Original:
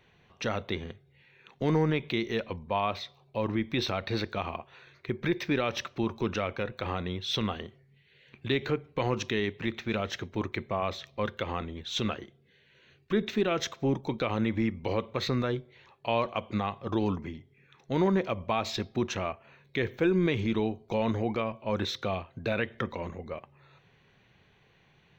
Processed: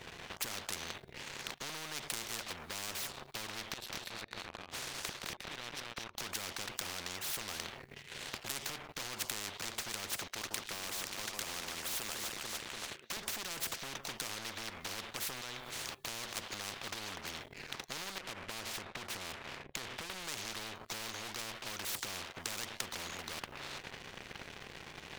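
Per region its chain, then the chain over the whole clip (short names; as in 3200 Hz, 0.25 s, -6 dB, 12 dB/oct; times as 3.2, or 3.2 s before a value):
3.69–6.18 flipped gate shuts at -27 dBFS, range -29 dB + tapped delay 0.168/0.211/0.222/0.238 s -18/-7.5/-16.5/-5.5 dB
10.27–13.17 HPF 390 Hz + echo with dull and thin repeats by turns 0.146 s, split 1800 Hz, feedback 61%, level -9.5 dB
15.41–16.37 high shelf 4000 Hz +10.5 dB + compressor 3:1, threshold -44 dBFS
18.18–20.1 LPF 2300 Hz 24 dB/oct + bell 1400 Hz -15 dB 0.45 oct + compressor 10:1, threshold -36 dBFS
whole clip: compressor 2.5:1, threshold -37 dBFS; sample leveller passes 3; spectral compressor 10:1; gain +3.5 dB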